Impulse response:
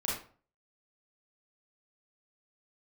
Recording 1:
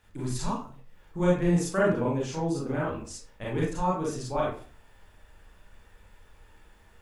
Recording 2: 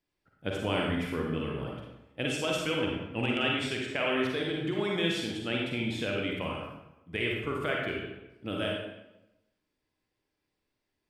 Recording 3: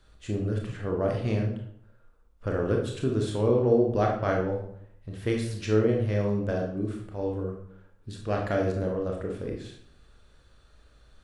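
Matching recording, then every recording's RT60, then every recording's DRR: 1; 0.45, 0.95, 0.65 s; -6.0, -2.0, 0.0 dB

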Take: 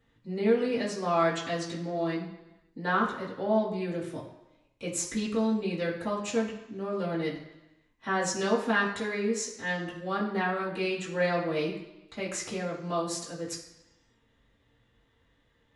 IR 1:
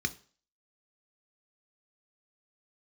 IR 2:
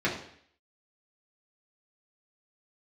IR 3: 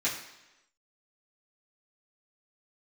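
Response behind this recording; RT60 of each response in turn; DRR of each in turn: 3; 0.40, 0.60, 1.0 s; 8.5, -6.5, -10.5 dB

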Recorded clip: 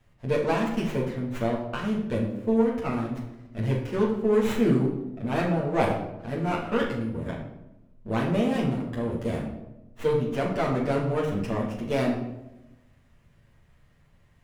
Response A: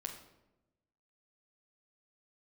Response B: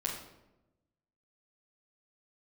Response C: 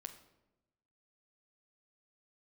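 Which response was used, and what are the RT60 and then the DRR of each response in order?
B; 0.95, 0.95, 0.95 s; 0.5, -5.5, 5.5 dB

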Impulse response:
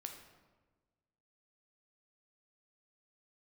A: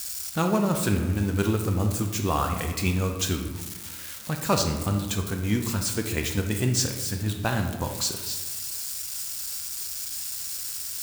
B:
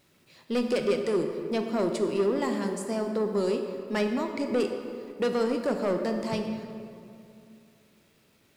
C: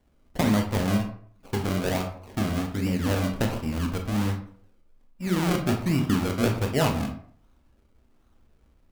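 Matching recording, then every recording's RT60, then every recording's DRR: A; 1.3, 2.5, 0.55 s; 3.5, 5.0, 3.0 dB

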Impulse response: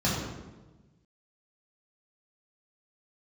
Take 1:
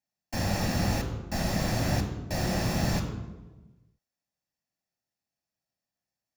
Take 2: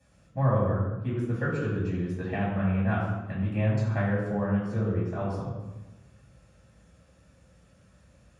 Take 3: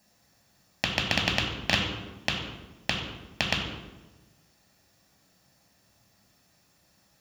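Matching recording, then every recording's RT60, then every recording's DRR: 2; 1.2, 1.2, 1.2 s; 4.5, -7.5, 0.5 dB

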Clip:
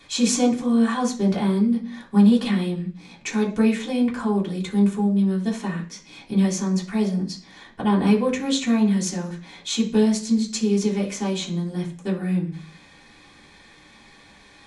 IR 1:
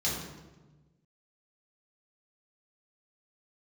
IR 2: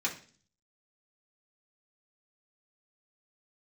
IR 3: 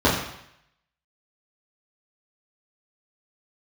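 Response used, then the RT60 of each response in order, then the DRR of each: 2; 1.2, 0.40, 0.75 s; -7.0, -5.0, -8.5 dB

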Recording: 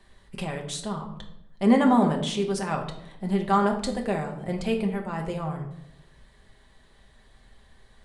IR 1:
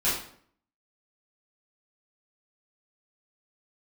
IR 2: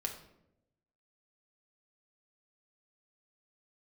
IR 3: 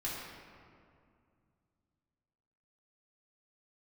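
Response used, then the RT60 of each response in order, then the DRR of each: 2; 0.60, 0.85, 2.3 s; -11.5, 1.5, -7.5 dB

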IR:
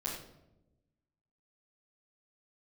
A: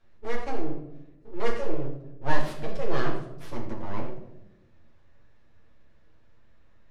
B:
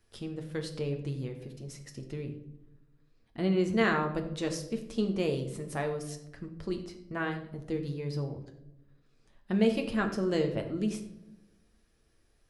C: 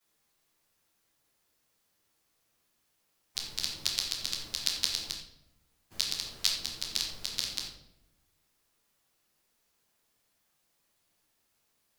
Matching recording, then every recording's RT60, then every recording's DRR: C; 0.95, 0.95, 0.90 s; -3.5, 3.5, -12.0 dB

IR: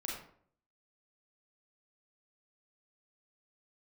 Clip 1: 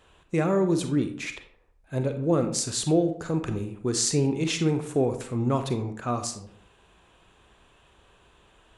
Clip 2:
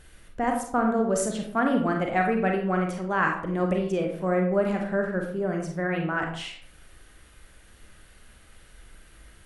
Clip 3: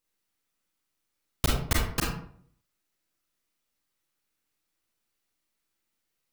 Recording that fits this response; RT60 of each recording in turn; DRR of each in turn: 3; 0.60, 0.60, 0.60 s; 7.0, 1.5, -3.5 dB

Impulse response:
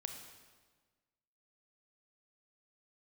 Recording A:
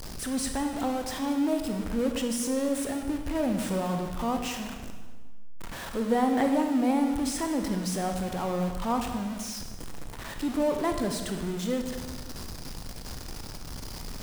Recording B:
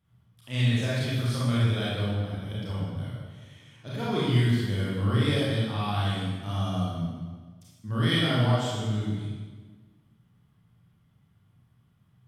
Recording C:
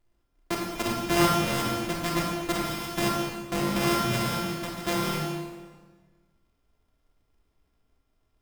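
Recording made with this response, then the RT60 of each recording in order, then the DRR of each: A; 1.4, 1.4, 1.4 s; 4.5, -8.5, -1.5 dB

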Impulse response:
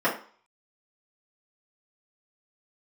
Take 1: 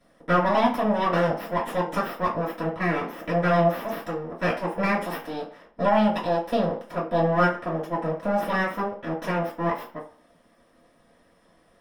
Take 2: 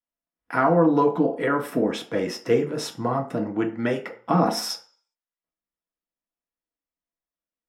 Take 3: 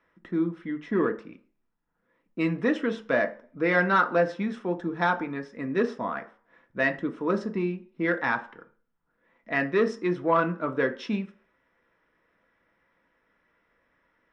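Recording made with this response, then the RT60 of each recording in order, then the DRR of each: 1; 0.45, 0.45, 0.45 s; -9.5, 0.5, 5.0 dB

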